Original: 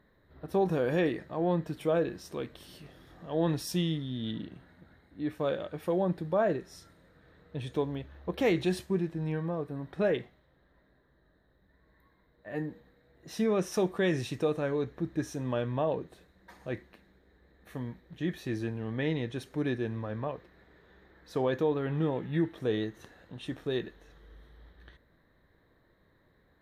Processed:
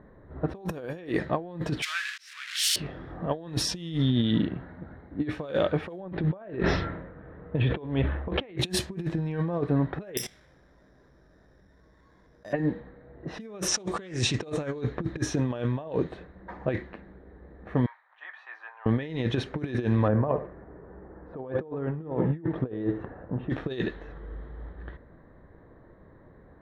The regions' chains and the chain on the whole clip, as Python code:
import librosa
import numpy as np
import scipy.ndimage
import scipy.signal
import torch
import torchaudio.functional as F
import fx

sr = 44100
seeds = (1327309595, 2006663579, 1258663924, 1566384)

y = fx.chain(x, sr, fx.crossing_spikes(level_db=-25.0),
    fx.steep_highpass(hz=1500.0, slope=36),
    fx.auto_swell(attack_ms=299.0), at=(1.82, 2.76))
y = fx.chain(y, sr, fx.lowpass(hz=3200.0, slope=24),
    fx.sustainer(db_per_s=54.0), at=(6.0, 8.58))
y = fx.chain(y, sr, fx.peak_eq(hz=3400.0, db=13.0, octaves=0.83),
    fx.level_steps(step_db=18),
    fx.resample_bad(factor=8, down='none', up='zero_stuff'), at=(10.17, 12.53))
y = fx.chain(y, sr, fx.lowpass_res(hz=7700.0, q=2.1),
    fx.doppler_dist(depth_ms=0.12), at=(13.68, 14.81))
y = fx.chain(y, sr, fx.steep_highpass(hz=900.0, slope=36),
    fx.high_shelf(hz=2400.0, db=-11.5), at=(17.86, 18.86))
y = fx.chain(y, sr, fx.lowpass(hz=1200.0, slope=12),
    fx.echo_feedback(ms=71, feedback_pct=27, wet_db=-13.5), at=(20.08, 23.5))
y = fx.env_lowpass(y, sr, base_hz=1100.0, full_db=-25.0)
y = fx.over_compress(y, sr, threshold_db=-36.0, ratio=-0.5)
y = F.gain(torch.from_numpy(y), 8.5).numpy()